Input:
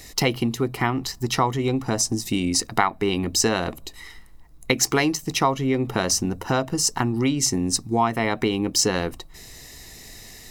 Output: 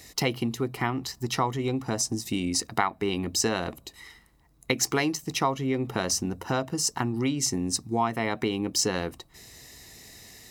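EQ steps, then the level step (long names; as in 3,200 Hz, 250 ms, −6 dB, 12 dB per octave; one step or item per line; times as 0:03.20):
high-pass filter 59 Hz
−5.0 dB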